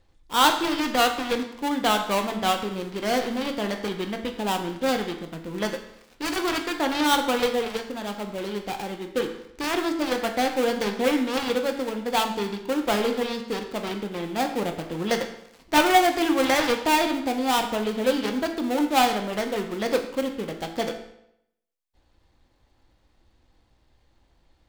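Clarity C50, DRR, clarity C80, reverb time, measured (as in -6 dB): 8.5 dB, 4.5 dB, 10.5 dB, 0.75 s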